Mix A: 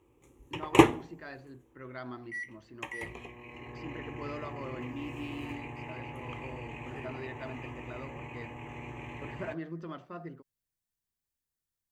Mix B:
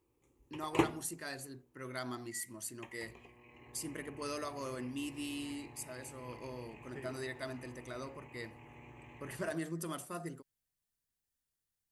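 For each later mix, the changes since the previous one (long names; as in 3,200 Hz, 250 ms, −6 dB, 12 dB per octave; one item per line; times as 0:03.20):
first voice: remove Gaussian smoothing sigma 2.6 samples
background −11.5 dB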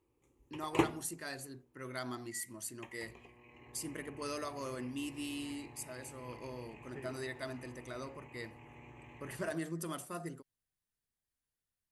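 second voice: add high-shelf EQ 3,900 Hz −11.5 dB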